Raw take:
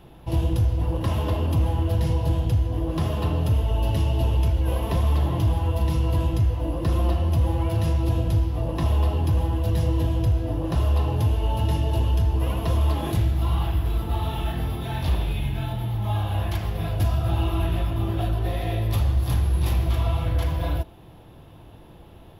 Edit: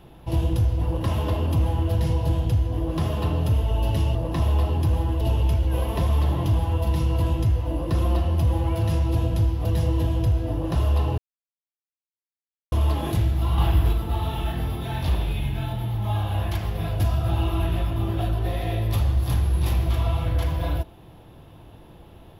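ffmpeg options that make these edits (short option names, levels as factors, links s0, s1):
-filter_complex "[0:a]asplit=8[s0][s1][s2][s3][s4][s5][s6][s7];[s0]atrim=end=4.152[s8];[s1]atrim=start=8.588:end=9.652[s9];[s2]atrim=start=4.148:end=8.592[s10];[s3]atrim=start=9.648:end=11.18,asetpts=PTS-STARTPTS,afade=t=out:st=1.528:d=0.004:c=hsin[s11];[s4]atrim=start=11.18:end=12.72,asetpts=PTS-STARTPTS,volume=0[s12];[s5]atrim=start=12.72:end=13.582,asetpts=PTS-STARTPTS,afade=t=in:d=0.004:c=hsin[s13];[s6]atrim=start=13.578:end=13.932,asetpts=PTS-STARTPTS,volume=1.68[s14];[s7]atrim=start=13.928[s15];[s8][s9]acrossfade=d=0.004:c1=hsin:c2=hsin[s16];[s16][s10]acrossfade=d=0.004:c1=hsin:c2=hsin[s17];[s11][s12][s13]concat=n=3:v=0:a=1[s18];[s17][s18]acrossfade=d=0.004:c1=hsin:c2=hsin[s19];[s19][s14]acrossfade=d=0.004:c1=hsin:c2=hsin[s20];[s20][s15]acrossfade=d=0.004:c1=hsin:c2=hsin"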